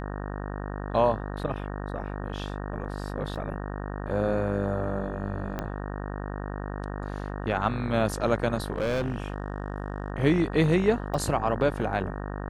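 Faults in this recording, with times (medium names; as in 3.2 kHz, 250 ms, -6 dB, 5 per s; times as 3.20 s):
buzz 50 Hz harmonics 37 -34 dBFS
3.35–3.36 s: dropout 6.4 ms
5.59 s: pop -17 dBFS
8.73–10.10 s: clipped -23.5 dBFS
11.14 s: dropout 3.4 ms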